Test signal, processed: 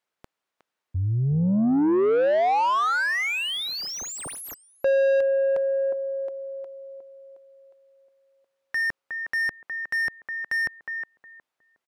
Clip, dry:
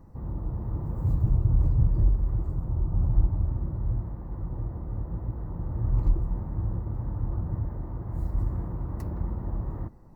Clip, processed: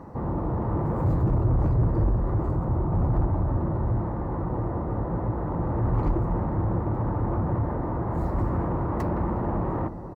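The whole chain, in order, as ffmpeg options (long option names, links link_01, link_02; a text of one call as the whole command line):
ffmpeg -i in.wav -filter_complex "[0:a]asplit=2[link_01][link_02];[link_02]adelay=363,lowpass=frequency=810:poles=1,volume=-12dB,asplit=2[link_03][link_04];[link_04]adelay=363,lowpass=frequency=810:poles=1,volume=0.32,asplit=2[link_05][link_06];[link_06]adelay=363,lowpass=frequency=810:poles=1,volume=0.32[link_07];[link_01][link_03][link_05][link_07]amix=inputs=4:normalize=0,asplit=2[link_08][link_09];[link_09]highpass=frequency=720:poles=1,volume=30dB,asoftclip=type=tanh:threshold=-10.5dB[link_10];[link_08][link_10]amix=inputs=2:normalize=0,lowpass=frequency=1000:poles=1,volume=-6dB,volume=-2dB" out.wav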